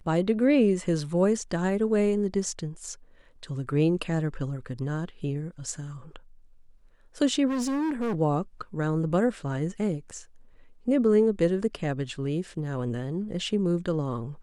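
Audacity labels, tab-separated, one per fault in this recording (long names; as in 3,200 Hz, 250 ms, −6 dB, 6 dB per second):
7.470000	8.160000	clipping −25 dBFS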